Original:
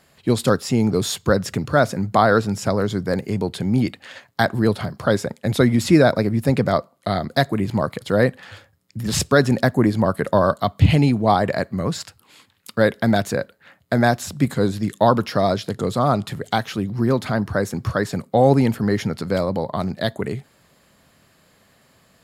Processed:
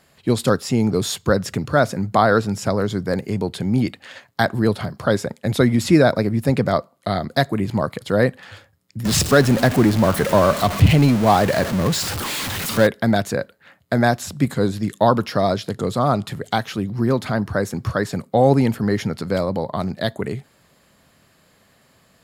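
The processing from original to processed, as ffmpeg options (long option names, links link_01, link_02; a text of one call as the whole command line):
ffmpeg -i in.wav -filter_complex "[0:a]asettb=1/sr,asplit=3[link_01][link_02][link_03];[link_01]atrim=end=9.054[link_04];[link_02]atrim=start=9.05:end=12.87,asetpts=PTS-STARTPTS,afade=type=in:duration=0.004:curve=qsin,afade=type=out:start_time=3.816:duration=0.004:curve=qsin,aeval=exprs='val(0)+0.5*0.1*sgn(val(0))':channel_layout=same[link_05];[link_03]atrim=start=12.866[link_06];[link_04][link_05]acrossfade=duration=0.004:curve1=hsin:curve2=qsin[link_07];[link_07][link_06]acrossfade=duration=0.004:curve1=qsin:curve2=hsin" out.wav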